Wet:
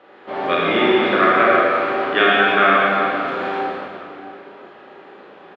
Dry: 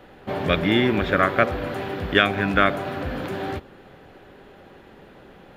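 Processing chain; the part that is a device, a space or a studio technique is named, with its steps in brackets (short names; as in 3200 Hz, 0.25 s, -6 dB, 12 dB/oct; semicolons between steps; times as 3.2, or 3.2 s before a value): station announcement (BPF 350–3700 Hz; bell 1200 Hz +5 dB 0.26 oct; loudspeakers at several distances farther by 12 m -3 dB, 58 m -11 dB; reverb RT60 2.8 s, pre-delay 45 ms, DRR -4 dB); gain -1 dB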